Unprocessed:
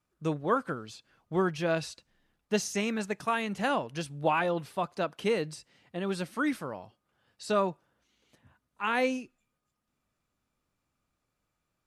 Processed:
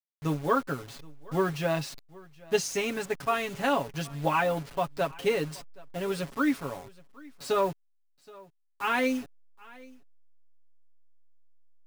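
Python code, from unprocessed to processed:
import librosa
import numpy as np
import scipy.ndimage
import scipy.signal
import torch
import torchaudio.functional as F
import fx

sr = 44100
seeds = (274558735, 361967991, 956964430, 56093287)

p1 = fx.delta_hold(x, sr, step_db=-42.0)
p2 = p1 + 0.79 * np.pad(p1, (int(7.2 * sr / 1000.0), 0))[:len(p1)]
y = p2 + fx.echo_single(p2, sr, ms=773, db=-23.0, dry=0)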